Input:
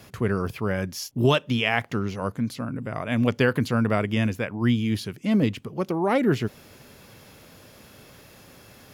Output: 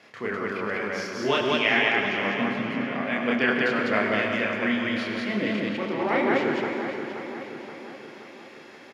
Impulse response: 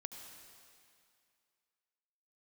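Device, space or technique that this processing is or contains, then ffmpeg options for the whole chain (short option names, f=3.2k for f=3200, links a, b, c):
station announcement: -filter_complex "[0:a]asettb=1/sr,asplit=3[a][b][c];[a]atrim=end=2.354[d];[b]atrim=start=2.35:end=2.82,asetpts=PTS-STARTPTS,afade=t=in:d=0.004:c=qsin,afade=t=out:st=0.466:d=0.004:c=qsin,tiltshelf=f=690:g=9.5[e];[c]atrim=start=2.816[f];[d][e]acrossfade=d=0.004:c1=hsin:c2=qsin[g];[g][f]acrossfade=d=0.004:c1=qsin:c2=hsin,highpass=320,lowpass=4.7k,equalizer=f=2k:t=o:w=0.56:g=8,aecho=1:1:29.15|201.2:0.891|1,asplit=2[h][i];[i]adelay=527,lowpass=f=4.7k:p=1,volume=-9dB,asplit=2[j][k];[k]adelay=527,lowpass=f=4.7k:p=1,volume=0.55,asplit=2[l][m];[m]adelay=527,lowpass=f=4.7k:p=1,volume=0.55,asplit=2[n][o];[o]adelay=527,lowpass=f=4.7k:p=1,volume=0.55,asplit=2[p][q];[q]adelay=527,lowpass=f=4.7k:p=1,volume=0.55,asplit=2[r][s];[s]adelay=527,lowpass=f=4.7k:p=1,volume=0.55[t];[h][j][l][n][p][r][t]amix=inputs=7:normalize=0[u];[1:a]atrim=start_sample=2205[v];[u][v]afir=irnorm=-1:irlink=0"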